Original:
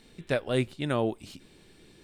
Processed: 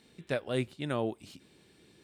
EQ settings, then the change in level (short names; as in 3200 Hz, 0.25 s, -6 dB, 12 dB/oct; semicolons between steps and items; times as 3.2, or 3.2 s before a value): HPF 76 Hz; -4.5 dB